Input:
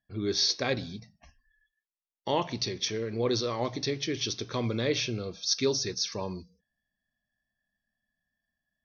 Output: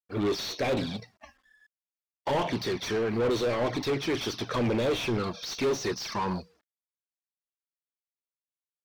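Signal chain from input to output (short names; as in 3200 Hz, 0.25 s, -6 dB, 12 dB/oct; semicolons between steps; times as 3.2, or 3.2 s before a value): G.711 law mismatch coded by A; envelope flanger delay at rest 4.1 ms, full sweep at -26 dBFS; overdrive pedal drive 34 dB, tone 1200 Hz, clips at -15.5 dBFS; gain -2.5 dB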